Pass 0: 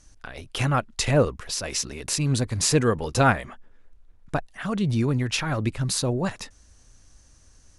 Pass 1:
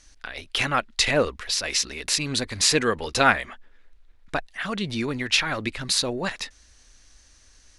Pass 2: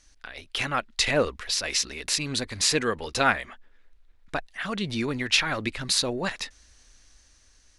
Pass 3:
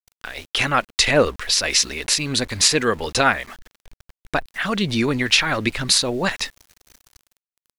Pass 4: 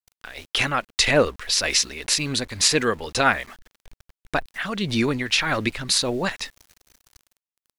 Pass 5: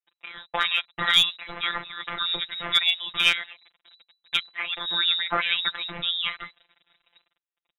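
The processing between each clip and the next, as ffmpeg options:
-af "equalizer=f=125:t=o:w=1:g=-11,equalizer=f=2k:t=o:w=1:g=7,equalizer=f=4k:t=o:w=1:g=8,volume=-1dB"
-af "dynaudnorm=f=410:g=5:m=11.5dB,volume=-5dB"
-af "alimiter=limit=-10.5dB:level=0:latency=1:release=337,aeval=exprs='val(0)*gte(abs(val(0)),0.00398)':c=same,volume=8dB"
-af "tremolo=f=1.8:d=0.44,volume=-1dB"
-af "lowpass=f=3.3k:t=q:w=0.5098,lowpass=f=3.3k:t=q:w=0.6013,lowpass=f=3.3k:t=q:w=0.9,lowpass=f=3.3k:t=q:w=2.563,afreqshift=-3900,aeval=exprs='clip(val(0),-1,0.282)':c=same,afftfilt=real='hypot(re,im)*cos(PI*b)':imag='0':win_size=1024:overlap=0.75,volume=2dB"

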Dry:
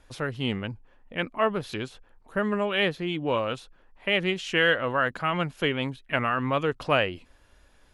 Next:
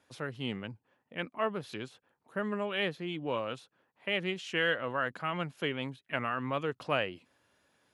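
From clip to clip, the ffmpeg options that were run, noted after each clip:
-af "highpass=f=110:w=0.5412,highpass=f=110:w=1.3066,volume=-7.5dB"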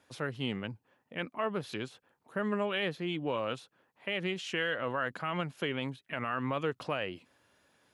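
-af "alimiter=limit=-24dB:level=0:latency=1:release=78,volume=2.5dB"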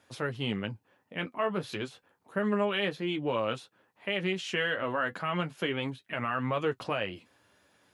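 -af "flanger=delay=8.9:depth=2.3:regen=-40:speed=0.3:shape=triangular,volume=6.5dB"

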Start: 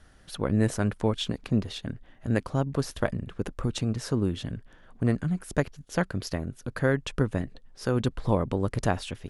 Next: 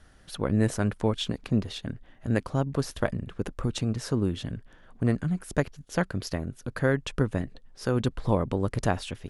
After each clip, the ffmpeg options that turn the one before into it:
-af anull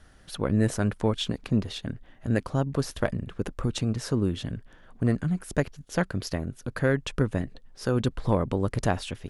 -af "acontrast=84,volume=-6dB"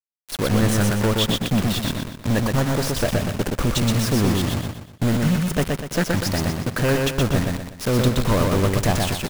-filter_complex "[0:a]asoftclip=type=hard:threshold=-25dB,acrusher=bits=5:mix=0:aa=0.000001,asplit=2[a][b];[b]aecho=0:1:122|244|366|488|610:0.708|0.276|0.108|0.042|0.0164[c];[a][c]amix=inputs=2:normalize=0,volume=8dB"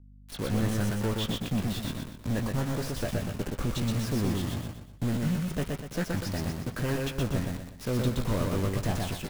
-filter_complex "[0:a]aeval=exprs='val(0)+0.00794*(sin(2*PI*50*n/s)+sin(2*PI*2*50*n/s)/2+sin(2*PI*3*50*n/s)/3+sin(2*PI*4*50*n/s)/4+sin(2*PI*5*50*n/s)/5)':c=same,acrossover=split=450|5400[a][b][c];[b]flanger=delay=15.5:depth=4.9:speed=1[d];[c]asoftclip=type=hard:threshold=-33.5dB[e];[a][d][e]amix=inputs=3:normalize=0,volume=-8.5dB"

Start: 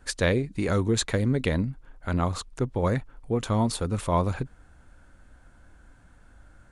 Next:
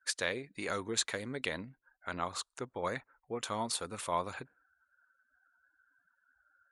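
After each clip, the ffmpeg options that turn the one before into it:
-filter_complex "[0:a]highpass=f=1.2k:p=1,afftdn=nr=30:nf=-58,asplit=2[a][b];[b]alimiter=limit=-18.5dB:level=0:latency=1:release=250,volume=1.5dB[c];[a][c]amix=inputs=2:normalize=0,volume=-8.5dB"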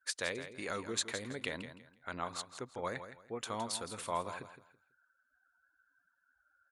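-af "aecho=1:1:165|330|495:0.282|0.0705|0.0176,volume=-3dB"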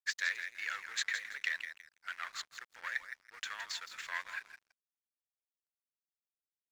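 -af "aresample=16000,aeval=exprs='clip(val(0),-1,0.0112)':c=same,aresample=44100,highpass=f=1.8k:t=q:w=4.1,aeval=exprs='sgn(val(0))*max(abs(val(0))-0.00133,0)':c=same,volume=1dB"

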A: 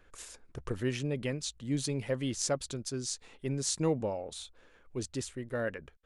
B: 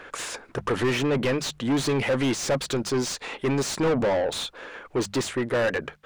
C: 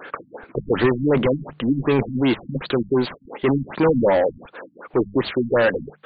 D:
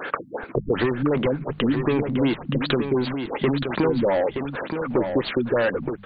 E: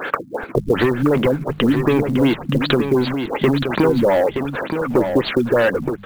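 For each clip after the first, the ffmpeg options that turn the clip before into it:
-filter_complex "[0:a]bandreject=f=50:t=h:w=6,bandreject=f=100:t=h:w=6,bandreject=f=150:t=h:w=6,bandreject=f=200:t=h:w=6,asplit=2[a][b];[b]highpass=f=720:p=1,volume=33dB,asoftclip=type=tanh:threshold=-14.5dB[c];[a][c]amix=inputs=2:normalize=0,lowpass=f=1.9k:p=1,volume=-6dB"
-filter_complex "[0:a]acrossover=split=120[a][b];[a]acrusher=bits=6:dc=4:mix=0:aa=0.000001[c];[c][b]amix=inputs=2:normalize=0,afftfilt=real='re*lt(b*sr/1024,260*pow(4800/260,0.5+0.5*sin(2*PI*2.7*pts/sr)))':imag='im*lt(b*sr/1024,260*pow(4800/260,0.5+0.5*sin(2*PI*2.7*pts/sr)))':win_size=1024:overlap=0.75,volume=6.5dB"
-af "acompressor=threshold=-27dB:ratio=4,aecho=1:1:923:0.447,volume=6.5dB"
-af "acrusher=bits=8:mode=log:mix=0:aa=0.000001,volume=5.5dB"

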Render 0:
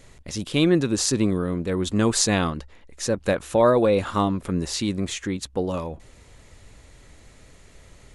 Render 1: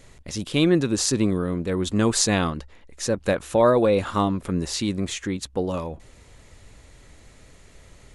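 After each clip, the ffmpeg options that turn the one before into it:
-af anull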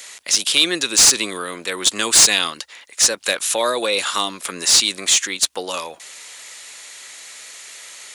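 -filter_complex "[0:a]aderivative,acrossover=split=430|3000[a][b][c];[b]acompressor=threshold=-55dB:ratio=2[d];[a][d][c]amix=inputs=3:normalize=0,asplit=2[e][f];[f]highpass=f=720:p=1,volume=28dB,asoftclip=type=tanh:threshold=-2dB[g];[e][g]amix=inputs=2:normalize=0,lowpass=f=3.2k:p=1,volume=-6dB,volume=6.5dB"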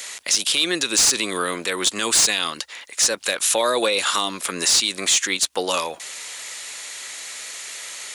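-af "alimiter=limit=-13dB:level=0:latency=1:release=177,volume=4dB"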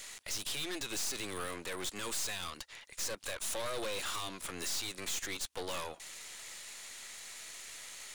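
-af "aeval=exprs='(tanh(20*val(0)+0.8)-tanh(0.8))/20':c=same,volume=-9dB"

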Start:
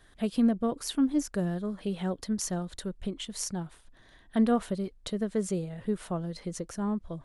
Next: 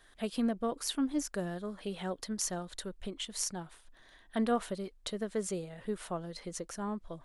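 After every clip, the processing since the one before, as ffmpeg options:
-af "equalizer=f=97:w=0.35:g=-11"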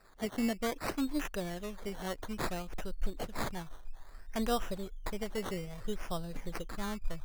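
-af "asubboost=boost=10:cutoff=80,acrusher=samples=14:mix=1:aa=0.000001:lfo=1:lforange=8.4:lforate=0.6"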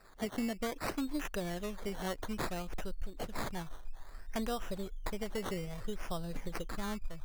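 -af "acompressor=threshold=-34dB:ratio=6,volume=2dB"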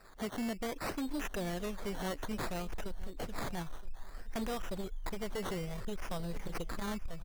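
-af "volume=35dB,asoftclip=hard,volume=-35dB,aecho=1:1:971:0.119,volume=2dB"

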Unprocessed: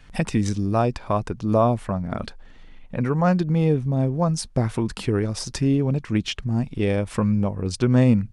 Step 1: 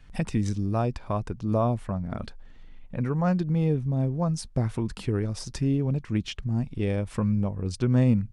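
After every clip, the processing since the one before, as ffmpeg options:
-af "lowshelf=f=190:g=6.5,volume=-7.5dB"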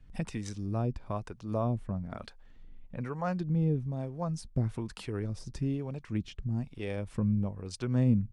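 -filter_complex "[0:a]acrossover=split=460[a][b];[a]aeval=exprs='val(0)*(1-0.7/2+0.7/2*cos(2*PI*1.1*n/s))':c=same[c];[b]aeval=exprs='val(0)*(1-0.7/2-0.7/2*cos(2*PI*1.1*n/s))':c=same[d];[c][d]amix=inputs=2:normalize=0,volume=-3dB"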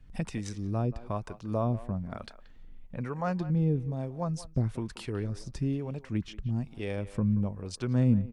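-filter_complex "[0:a]asplit=2[a][b];[b]adelay=180,highpass=300,lowpass=3.4k,asoftclip=type=hard:threshold=-24dB,volume=-15dB[c];[a][c]amix=inputs=2:normalize=0,volume=1.5dB"

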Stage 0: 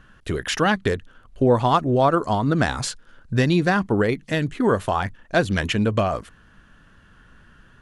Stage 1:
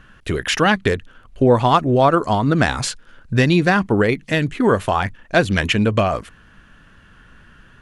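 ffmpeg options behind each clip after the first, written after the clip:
-af "equalizer=f=2.4k:w=2:g=4,volume=3.5dB"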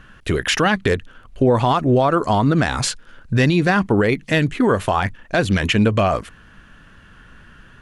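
-af "alimiter=level_in=8.5dB:limit=-1dB:release=50:level=0:latency=1,volume=-6.5dB"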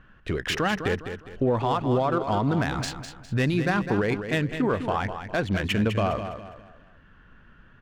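-filter_complex "[0:a]adynamicsmooth=sensitivity=1.5:basefreq=3.1k,asplit=2[a][b];[b]aecho=0:1:204|408|612|816:0.355|0.128|0.046|0.0166[c];[a][c]amix=inputs=2:normalize=0,volume=-8dB"

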